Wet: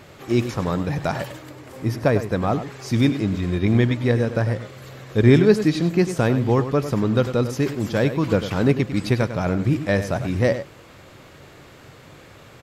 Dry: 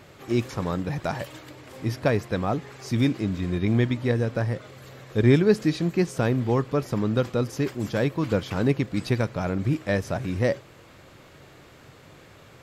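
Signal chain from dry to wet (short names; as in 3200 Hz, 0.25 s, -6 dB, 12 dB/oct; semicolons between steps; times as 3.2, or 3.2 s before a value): 1.32–2.42 bell 3400 Hz -5 dB 1.7 oct; outdoor echo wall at 17 m, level -11 dB; gain +4 dB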